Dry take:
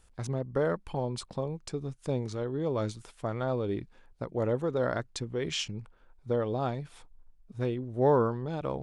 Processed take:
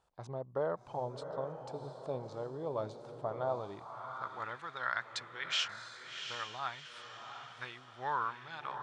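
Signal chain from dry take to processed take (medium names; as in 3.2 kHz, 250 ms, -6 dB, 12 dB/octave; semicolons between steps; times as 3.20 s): graphic EQ 125/250/500/1000/2000/4000/8000 Hz +3/-7/-12/+5/-4/+7/+6 dB; echo that smears into a reverb 722 ms, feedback 40%, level -7.5 dB; band-pass sweep 550 Hz -> 1.8 kHz, 3.37–4.61 s; trim +6.5 dB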